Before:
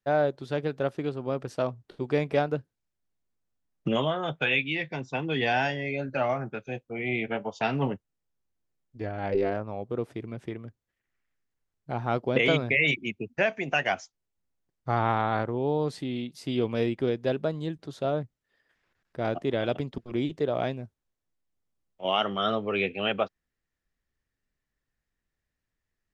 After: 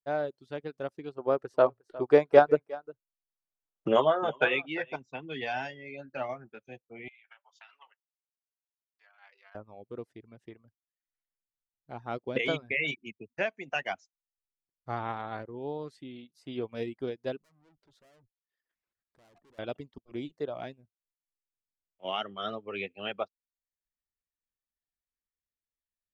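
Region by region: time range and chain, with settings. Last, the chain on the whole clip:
1.18–4.96 band shelf 740 Hz +9 dB 2.6 oct + echo 0.357 s -13 dB
7.08–9.55 HPF 1100 Hz 24 dB/oct + compressor 20:1, threshold -34 dBFS
17.42–19.59 treble ducked by the level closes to 1600 Hz, closed at -28.5 dBFS + tube stage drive 44 dB, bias 0.5 + high shelf 6200 Hz +7.5 dB
whole clip: reverb removal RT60 0.59 s; bell 140 Hz -4 dB 0.77 oct; upward expander 1.5:1, over -45 dBFS

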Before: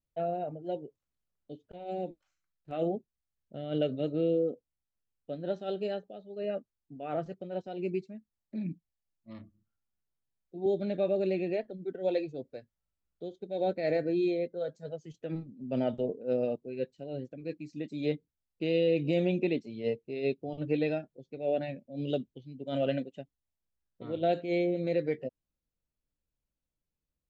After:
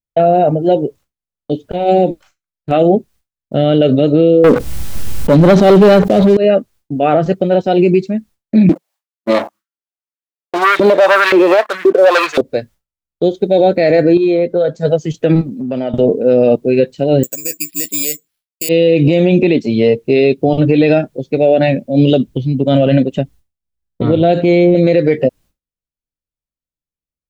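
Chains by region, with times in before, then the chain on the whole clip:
4.44–6.37 low shelf 250 Hz +11 dB + sample leveller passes 3 + fast leveller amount 70%
8.69–12.41 sample leveller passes 3 + LFO high-pass saw up 1.9 Hz 310–2100 Hz
14.17–14.81 LPF 3700 Hz 6 dB/oct + compressor 10:1, threshold -36 dBFS
15.41–15.94 compressor 4:1, threshold -44 dBFS + low shelf 130 Hz -9 dB
17.23–18.69 tilt +4.5 dB/oct + careless resampling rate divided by 6×, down filtered, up zero stuff + upward expander, over -45 dBFS
22.28–24.75 low shelf 200 Hz +10 dB + compressor 1.5:1, threshold -42 dBFS
whole clip: expander -58 dBFS; compressor, threshold -29 dBFS; maximiser +28.5 dB; gain -1 dB

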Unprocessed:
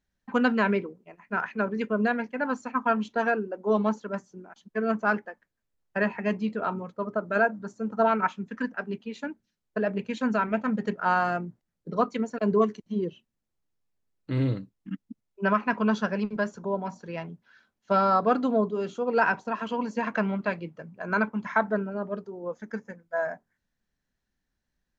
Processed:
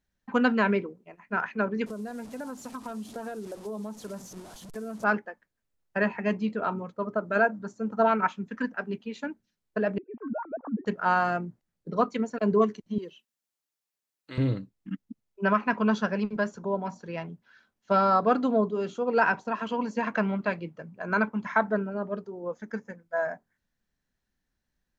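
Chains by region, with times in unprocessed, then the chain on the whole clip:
1.86–5.04 delta modulation 64 kbps, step -37.5 dBFS + bell 2100 Hz -10 dB 2 oct + compressor, threshold -33 dBFS
9.98–10.86 sine-wave speech + ladder low-pass 1100 Hz, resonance 40%
12.98–14.38 HPF 1100 Hz 6 dB/oct + high shelf 5100 Hz +6.5 dB
whole clip: dry

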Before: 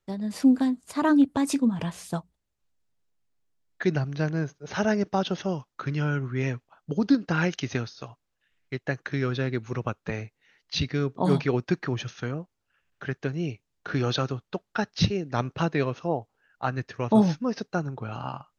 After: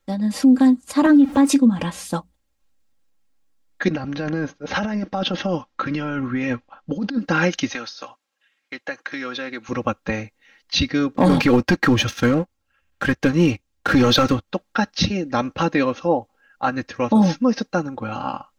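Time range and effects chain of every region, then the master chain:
1.06–1.49 zero-crossing step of -38.5 dBFS + high shelf 4400 Hz -10 dB + three-band squash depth 40%
3.88–7.19 LPF 4400 Hz + negative-ratio compressor -29 dBFS
7.7–9.69 weighting filter A + compressor 2:1, threshold -35 dBFS
11.17–14.48 bell 70 Hz +10.5 dB 1.2 oct + sample leveller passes 2
whole clip: comb 3.7 ms, depth 75%; limiter -13.5 dBFS; gain +6.5 dB

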